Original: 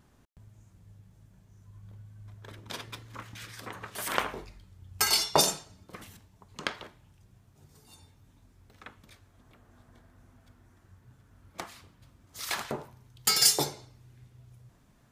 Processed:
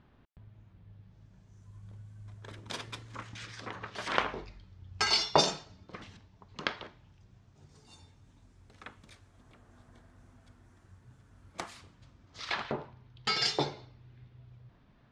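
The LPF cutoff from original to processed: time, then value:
LPF 24 dB/oct
0.89 s 3800 Hz
1.71 s 9300 Hz
2.95 s 9300 Hz
3.88 s 5400 Hz
6.81 s 5400 Hz
8.87 s 9600 Hz
11.76 s 9600 Hz
12.54 s 4200 Hz

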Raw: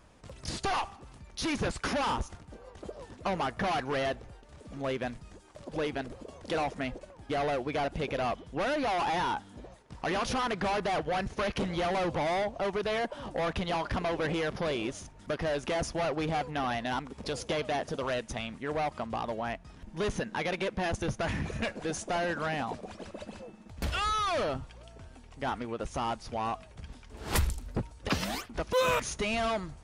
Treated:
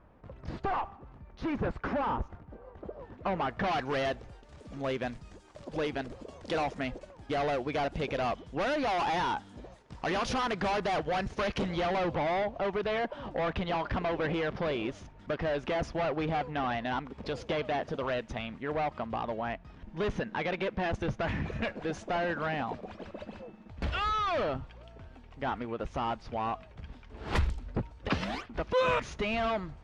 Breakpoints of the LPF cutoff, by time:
2.9 s 1500 Hz
3.54 s 3100 Hz
3.9 s 7100 Hz
11.48 s 7100 Hz
12.23 s 3300 Hz

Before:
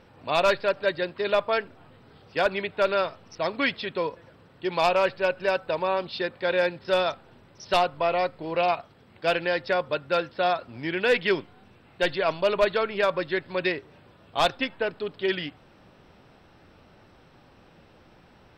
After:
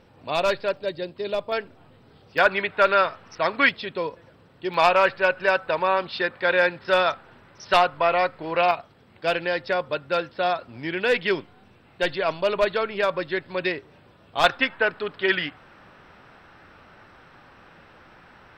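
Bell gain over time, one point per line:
bell 1500 Hz 1.7 oct
-2.5 dB
from 0.77 s -11 dB
from 1.52 s -2.5 dB
from 2.38 s +9.5 dB
from 3.69 s -0.5 dB
from 4.74 s +8.5 dB
from 8.71 s +1 dB
from 14.44 s +11 dB

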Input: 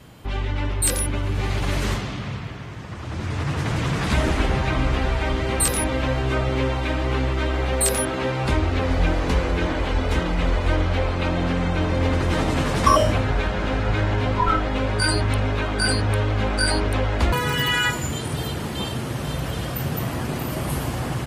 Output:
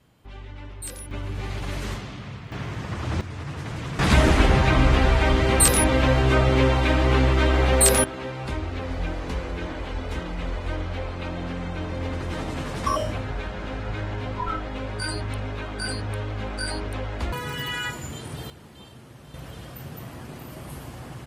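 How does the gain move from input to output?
-14.5 dB
from 1.11 s -7 dB
from 2.52 s +3.5 dB
from 3.21 s -8.5 dB
from 3.99 s +3.5 dB
from 8.04 s -8.5 dB
from 18.5 s -19 dB
from 19.34 s -12.5 dB

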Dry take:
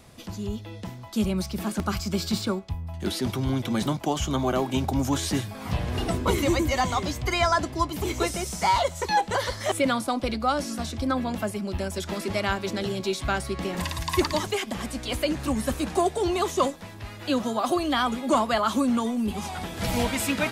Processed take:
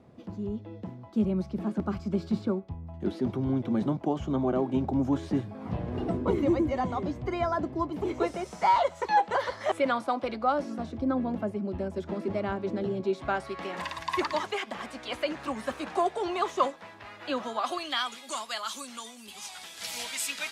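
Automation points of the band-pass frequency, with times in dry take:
band-pass, Q 0.66
7.71 s 300 Hz
8.69 s 860 Hz
10.26 s 860 Hz
10.99 s 320 Hz
13.03 s 320 Hz
13.57 s 1200 Hz
17.36 s 1200 Hz
18.27 s 6000 Hz

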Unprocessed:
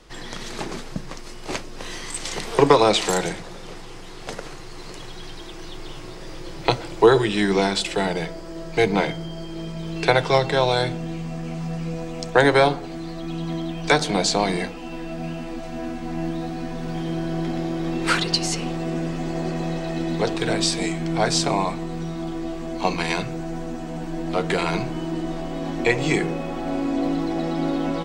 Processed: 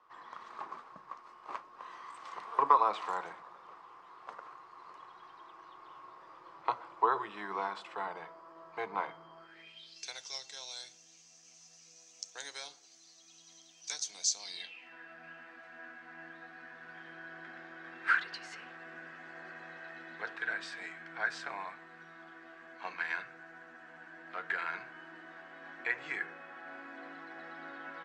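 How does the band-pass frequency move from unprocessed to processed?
band-pass, Q 6.4
9.37 s 1100 Hz
10.03 s 6100 Hz
14.39 s 6100 Hz
14.95 s 1600 Hz

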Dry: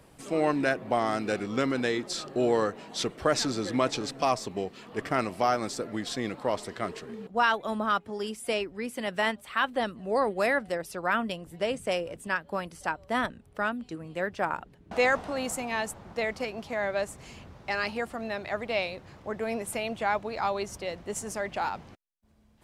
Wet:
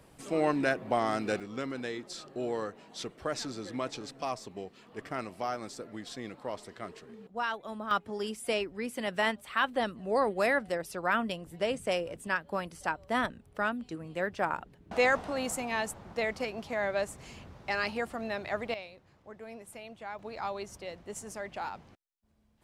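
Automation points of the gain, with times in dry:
-2 dB
from 1.4 s -9 dB
from 7.91 s -1.5 dB
from 18.74 s -14 dB
from 20.19 s -7 dB

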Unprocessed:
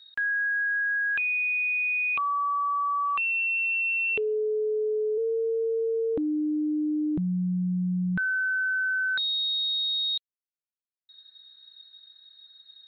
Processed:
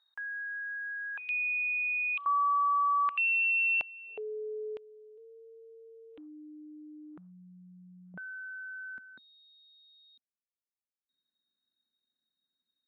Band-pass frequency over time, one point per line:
band-pass, Q 3
940 Hz
from 1.29 s 3100 Hz
from 2.26 s 1100 Hz
from 3.09 s 2500 Hz
from 3.81 s 740 Hz
from 4.77 s 3000 Hz
from 6.18 s 1300 Hz
from 8.14 s 630 Hz
from 8.98 s 240 Hz

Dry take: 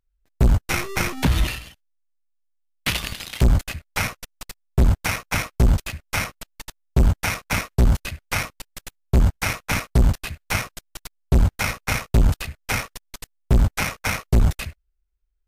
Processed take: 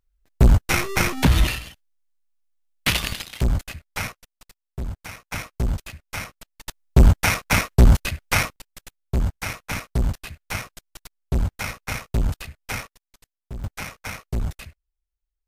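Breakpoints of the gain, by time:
+2.5 dB
from 3.22 s -4.5 dB
from 4.12 s -13.5 dB
from 5.32 s -7 dB
from 6.67 s +4 dB
from 8.56 s -5.5 dB
from 12.87 s -18 dB
from 13.64 s -9 dB

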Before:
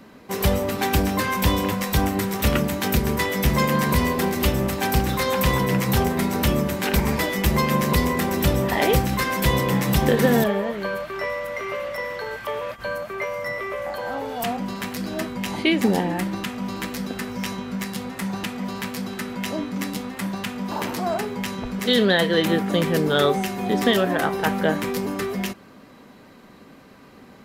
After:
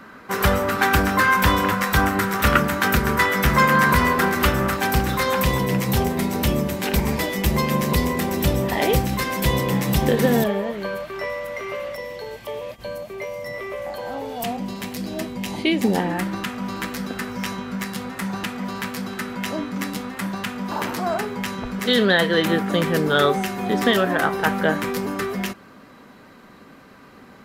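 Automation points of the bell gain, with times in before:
bell 1400 Hz 0.91 oct
+14 dB
from 4.77 s +5.5 dB
from 5.44 s -3 dB
from 11.95 s -14 dB
from 13.54 s -6.5 dB
from 15.95 s +5 dB

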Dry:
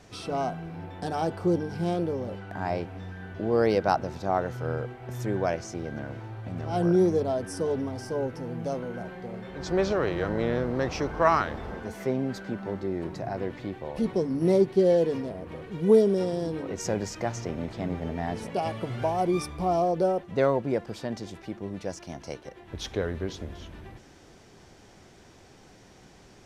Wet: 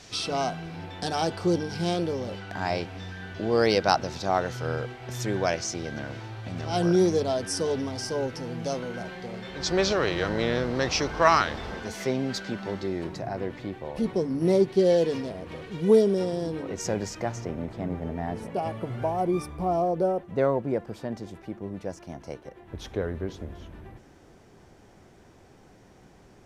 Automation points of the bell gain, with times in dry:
bell 4700 Hz 2.3 oct
12.87 s +12.5 dB
13.28 s +1.5 dB
14.37 s +1.5 dB
14.99 s +8.5 dB
15.64 s +8.5 dB
16.26 s +1.5 dB
17.05 s +1.5 dB
17.67 s -7.5 dB

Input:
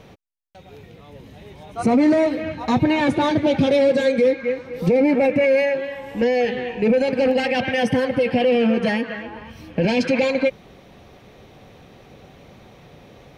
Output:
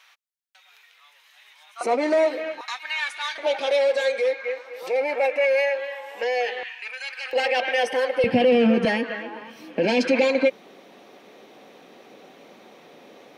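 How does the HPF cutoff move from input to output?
HPF 24 dB/oct
1200 Hz
from 1.81 s 420 Hz
from 2.61 s 1300 Hz
from 3.38 s 570 Hz
from 6.63 s 1300 Hz
from 7.33 s 450 Hz
from 8.24 s 110 Hz
from 8.85 s 240 Hz

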